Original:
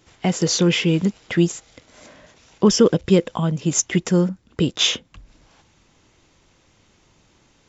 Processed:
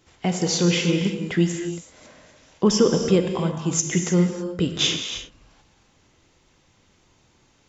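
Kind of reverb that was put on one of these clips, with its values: non-linear reverb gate 0.35 s flat, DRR 4.5 dB; gain -3.5 dB

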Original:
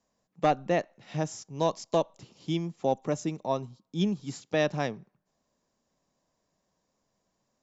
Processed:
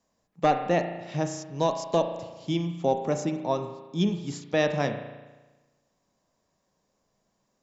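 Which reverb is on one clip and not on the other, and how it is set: spring tank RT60 1.2 s, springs 35 ms, chirp 50 ms, DRR 6.5 dB; gain +2 dB

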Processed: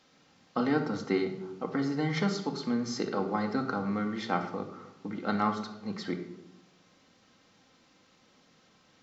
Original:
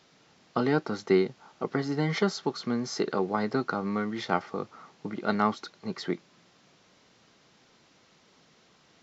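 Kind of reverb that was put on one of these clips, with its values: shoebox room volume 2600 m³, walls furnished, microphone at 2.1 m; gain -4 dB

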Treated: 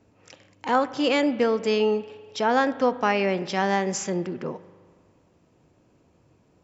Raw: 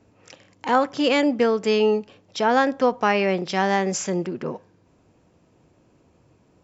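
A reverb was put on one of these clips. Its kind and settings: spring tank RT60 1.9 s, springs 40 ms, chirp 35 ms, DRR 15.5 dB; gain -2.5 dB

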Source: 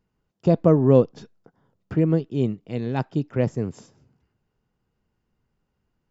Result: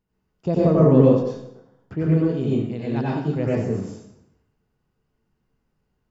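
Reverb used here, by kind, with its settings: plate-style reverb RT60 0.8 s, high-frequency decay 0.85×, pre-delay 80 ms, DRR -6.5 dB; gain -5.5 dB

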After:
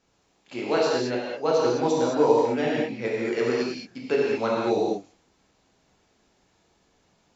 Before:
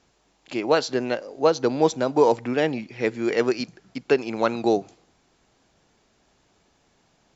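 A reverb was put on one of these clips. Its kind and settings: non-linear reverb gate 0.24 s flat, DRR -5.5 dB; gain -8 dB

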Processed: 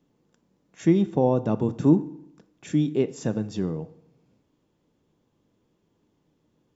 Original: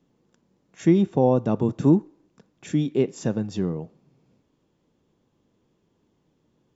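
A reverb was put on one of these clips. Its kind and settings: FDN reverb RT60 0.77 s, low-frequency decay 1.05×, high-frequency decay 0.9×, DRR 14.5 dB; gain -1.5 dB

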